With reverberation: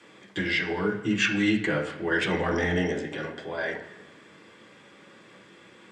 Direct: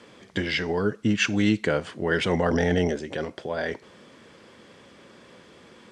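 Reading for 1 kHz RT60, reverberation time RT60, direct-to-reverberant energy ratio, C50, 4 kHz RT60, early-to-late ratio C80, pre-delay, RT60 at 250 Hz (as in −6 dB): 1.1 s, 1.3 s, −3.5 dB, 7.5 dB, 2.3 s, 10.5 dB, 3 ms, 1.1 s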